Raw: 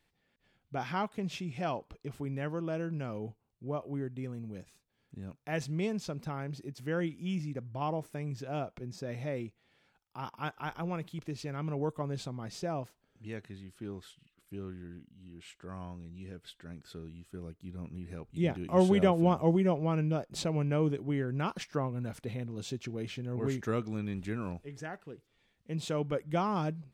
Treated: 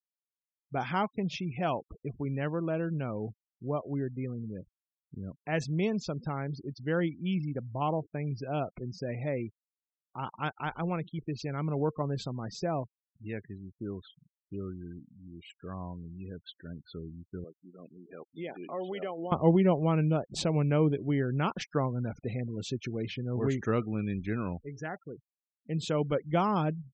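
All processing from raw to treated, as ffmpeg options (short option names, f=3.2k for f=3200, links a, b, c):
-filter_complex "[0:a]asettb=1/sr,asplit=3[a][b][c];[a]atrim=end=17.444[d];[b]atrim=start=17.44:end=19.32,asetpts=PTS-STARTPTS,afade=t=in:d=0.004:c=qsin,afade=t=out:st=1.876:d=0.004:c=qsin,highpass=390,bandreject=f=940:w=12,acompressor=threshold=-39dB:ratio=3:attack=3.2:release=140:knee=1:detection=peak[e];[c]atrim=start=19.316[f];[d][e]acrossfade=d=0.004:c1=hsin:c2=qsin[g];[g][f]acrossfade=d=0.004:c1=qsin:c2=hsin,lowpass=8.6k,afftfilt=real='re*gte(hypot(re,im),0.00501)':imag='im*gte(hypot(re,im),0.00501)':win_size=1024:overlap=0.75,volume=3.5dB"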